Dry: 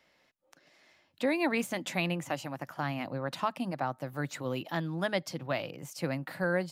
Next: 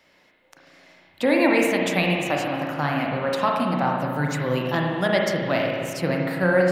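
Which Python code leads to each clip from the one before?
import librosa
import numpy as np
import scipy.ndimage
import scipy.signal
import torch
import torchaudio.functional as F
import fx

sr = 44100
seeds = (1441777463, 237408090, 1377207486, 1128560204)

y = fx.rev_spring(x, sr, rt60_s=1.9, pass_ms=(33, 55), chirp_ms=60, drr_db=-1.0)
y = y * 10.0 ** (7.5 / 20.0)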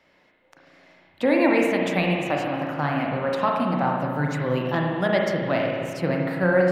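y = fx.high_shelf(x, sr, hz=3900.0, db=-10.5)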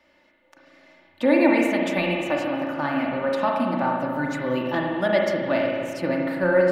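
y = x + 0.61 * np.pad(x, (int(3.4 * sr / 1000.0), 0))[:len(x)]
y = y * 10.0 ** (-1.5 / 20.0)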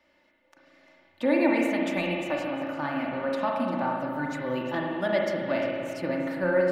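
y = x + 10.0 ** (-13.5 / 20.0) * np.pad(x, (int(349 * sr / 1000.0), 0))[:len(x)]
y = y * 10.0 ** (-5.0 / 20.0)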